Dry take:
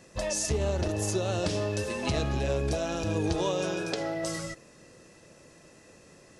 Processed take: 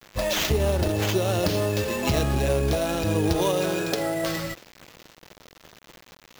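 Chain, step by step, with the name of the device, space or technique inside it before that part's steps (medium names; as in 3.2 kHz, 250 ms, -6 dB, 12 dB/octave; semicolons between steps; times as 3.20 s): early 8-bit sampler (sample-rate reducer 9.6 kHz, jitter 0%; bit crusher 8-bit); trim +5.5 dB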